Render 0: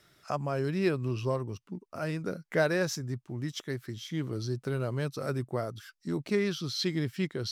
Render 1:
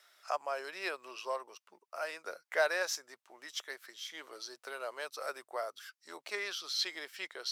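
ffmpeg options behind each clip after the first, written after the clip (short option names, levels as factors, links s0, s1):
-af "highpass=f=610:w=0.5412,highpass=f=610:w=1.3066"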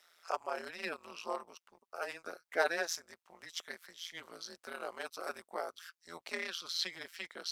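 -af "tremolo=f=170:d=0.974,volume=1.33"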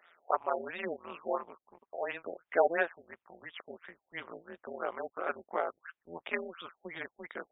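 -af "afftfilt=real='re*lt(b*sr/1024,800*pow(3800/800,0.5+0.5*sin(2*PI*2.9*pts/sr)))':imag='im*lt(b*sr/1024,800*pow(3800/800,0.5+0.5*sin(2*PI*2.9*pts/sr)))':win_size=1024:overlap=0.75,volume=2.11"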